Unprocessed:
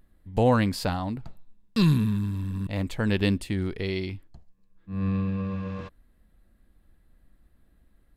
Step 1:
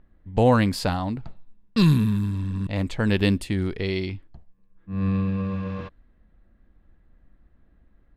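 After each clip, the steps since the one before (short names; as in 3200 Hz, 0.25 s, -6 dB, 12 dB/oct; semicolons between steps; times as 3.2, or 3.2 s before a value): low-pass opened by the level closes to 2200 Hz, open at -22.5 dBFS; gain +3 dB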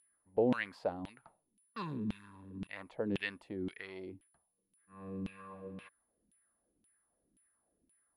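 whine 10000 Hz -42 dBFS; LFO band-pass saw down 1.9 Hz 240–3000 Hz; harmonic-percussive split harmonic -3 dB; gain -4 dB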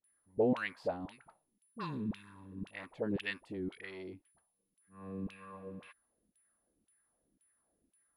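dispersion highs, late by 42 ms, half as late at 690 Hz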